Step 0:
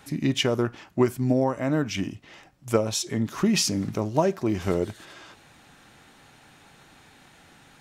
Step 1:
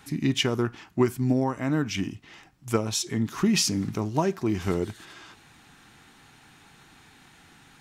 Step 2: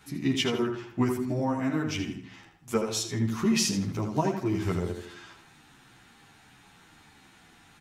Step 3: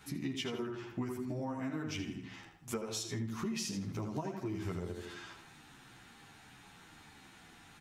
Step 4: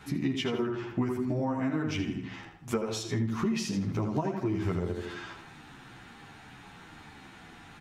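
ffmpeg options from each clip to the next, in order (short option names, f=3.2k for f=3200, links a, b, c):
-af "equalizer=f=570:t=o:w=0.46:g=-10"
-filter_complex "[0:a]asplit=2[a][b];[b]adelay=80,lowpass=f=3.9k:p=1,volume=-5.5dB,asplit=2[c][d];[d]adelay=80,lowpass=f=3.9k:p=1,volume=0.42,asplit=2[e][f];[f]adelay=80,lowpass=f=3.9k:p=1,volume=0.42,asplit=2[g][h];[h]adelay=80,lowpass=f=3.9k:p=1,volume=0.42,asplit=2[i][j];[j]adelay=80,lowpass=f=3.9k:p=1,volume=0.42[k];[c][e][g][i][k]amix=inputs=5:normalize=0[l];[a][l]amix=inputs=2:normalize=0,asplit=2[m][n];[n]adelay=11.1,afreqshift=-1.4[o];[m][o]amix=inputs=2:normalize=1"
-af "acompressor=threshold=-35dB:ratio=5,volume=-1dB"
-af "highshelf=f=4.6k:g=-11.5,volume=8.5dB"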